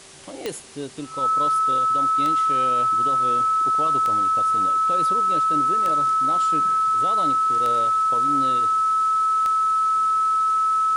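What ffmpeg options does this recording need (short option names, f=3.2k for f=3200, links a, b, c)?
-af "adeclick=t=4,bandreject=f=386.5:t=h:w=4,bandreject=f=773:t=h:w=4,bandreject=f=1.1595k:t=h:w=4,bandreject=f=1.546k:t=h:w=4,bandreject=f=1.3k:w=30,afwtdn=0.0071"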